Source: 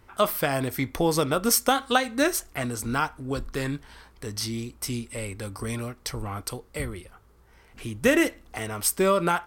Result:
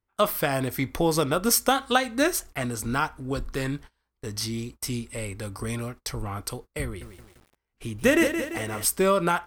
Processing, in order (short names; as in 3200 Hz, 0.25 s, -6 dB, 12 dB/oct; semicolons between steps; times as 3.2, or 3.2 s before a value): gate -41 dBFS, range -29 dB; low shelf 73 Hz +2.5 dB; 6.84–8.85 lo-fi delay 0.171 s, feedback 55%, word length 8-bit, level -8 dB